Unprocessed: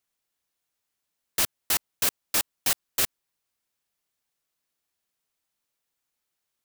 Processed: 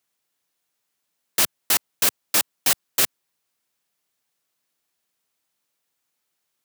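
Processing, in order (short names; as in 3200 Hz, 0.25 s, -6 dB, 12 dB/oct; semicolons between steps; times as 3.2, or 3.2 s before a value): HPF 110 Hz; gain +5 dB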